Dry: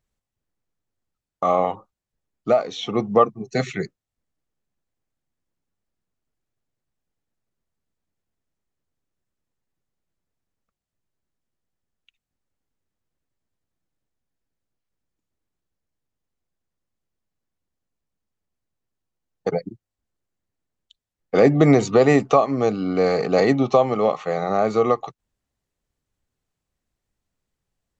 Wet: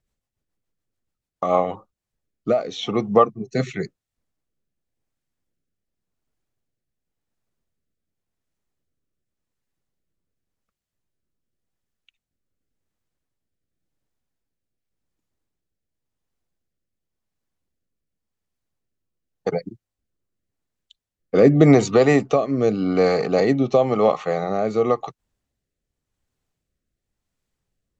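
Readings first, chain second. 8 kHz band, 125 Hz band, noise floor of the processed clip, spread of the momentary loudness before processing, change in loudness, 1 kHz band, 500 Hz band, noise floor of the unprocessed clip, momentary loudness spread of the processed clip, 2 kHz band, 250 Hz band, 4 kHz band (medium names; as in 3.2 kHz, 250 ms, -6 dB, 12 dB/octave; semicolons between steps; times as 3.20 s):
no reading, +1.5 dB, -85 dBFS, 13 LU, +0.5 dB, -2.0 dB, 0.0 dB, under -85 dBFS, 14 LU, -0.5 dB, +1.5 dB, 0.0 dB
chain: rotary cabinet horn 7 Hz, later 0.9 Hz, at 1.31 s; trim +2.5 dB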